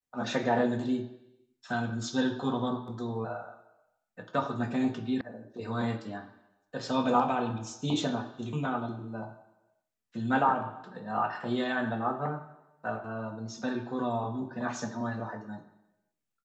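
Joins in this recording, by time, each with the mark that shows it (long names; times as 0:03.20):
0:05.21: cut off before it has died away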